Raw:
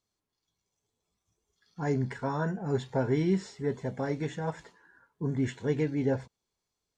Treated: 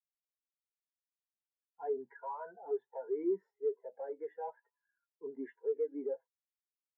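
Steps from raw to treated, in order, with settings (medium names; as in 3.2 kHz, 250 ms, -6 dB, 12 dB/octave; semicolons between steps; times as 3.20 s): Bessel high-pass 190 Hz, order 4; three-band isolator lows -23 dB, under 440 Hz, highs -13 dB, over 2.2 kHz; compression 10:1, threshold -35 dBFS, peak gain reduction 8.5 dB; saturation -39.5 dBFS, distortion -10 dB; spectral contrast expander 2.5:1; trim +14.5 dB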